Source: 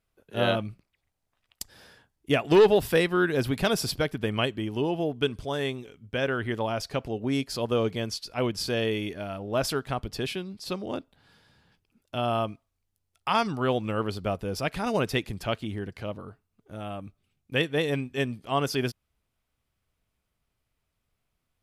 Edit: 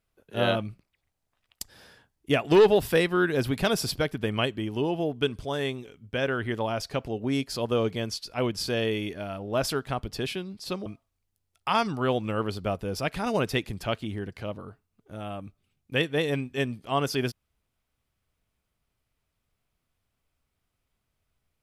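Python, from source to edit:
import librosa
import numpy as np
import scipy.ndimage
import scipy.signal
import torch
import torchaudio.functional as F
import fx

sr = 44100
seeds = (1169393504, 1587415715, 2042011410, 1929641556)

y = fx.edit(x, sr, fx.cut(start_s=10.86, length_s=1.6), tone=tone)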